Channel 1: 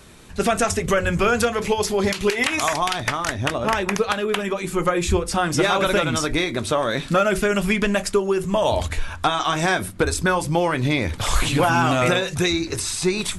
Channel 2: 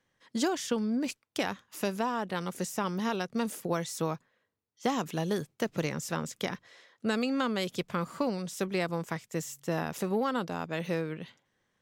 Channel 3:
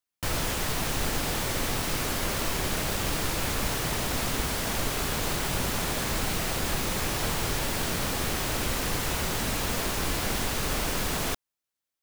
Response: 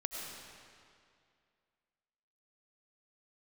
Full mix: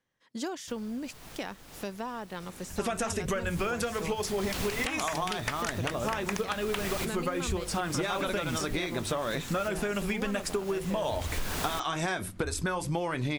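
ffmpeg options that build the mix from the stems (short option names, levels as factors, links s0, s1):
-filter_complex "[0:a]adelay=2400,volume=0.501[s0];[1:a]volume=0.501,asplit=2[s1][s2];[2:a]alimiter=limit=0.119:level=0:latency=1:release=329,adelay=450,volume=0.841,afade=t=in:st=3.35:d=0.22:silence=0.298538[s3];[s2]apad=whole_len=550209[s4];[s3][s4]sidechaincompress=threshold=0.00501:ratio=12:attack=20:release=429[s5];[s0][s1][s5]amix=inputs=3:normalize=0,acompressor=threshold=0.0447:ratio=6"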